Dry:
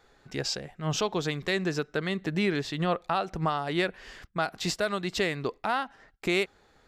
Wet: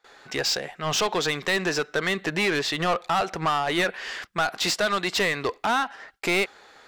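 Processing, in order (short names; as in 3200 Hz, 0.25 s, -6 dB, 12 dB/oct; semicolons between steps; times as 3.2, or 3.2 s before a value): gate with hold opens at -53 dBFS; low shelf 280 Hz -5 dB; overdrive pedal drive 20 dB, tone 6600 Hz, clips at -15 dBFS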